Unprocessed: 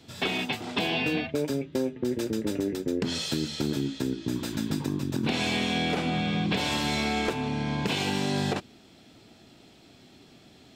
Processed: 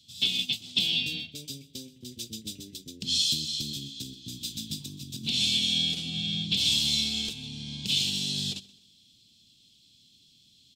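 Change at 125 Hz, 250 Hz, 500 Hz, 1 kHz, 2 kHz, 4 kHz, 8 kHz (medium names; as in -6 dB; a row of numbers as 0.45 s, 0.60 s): -7.0 dB, -11.0 dB, -22.0 dB, under -25 dB, -7.0 dB, +7.5 dB, +5.5 dB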